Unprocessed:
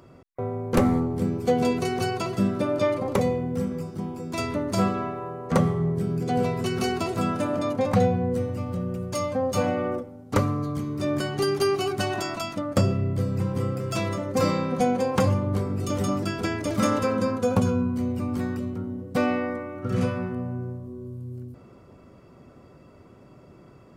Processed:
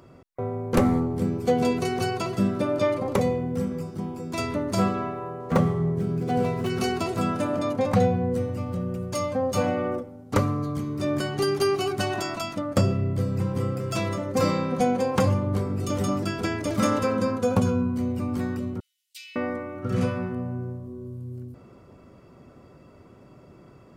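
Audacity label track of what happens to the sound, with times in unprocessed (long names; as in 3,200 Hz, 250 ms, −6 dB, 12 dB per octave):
5.400000	6.700000	running median over 9 samples
18.800000	19.360000	Butterworth high-pass 2,800 Hz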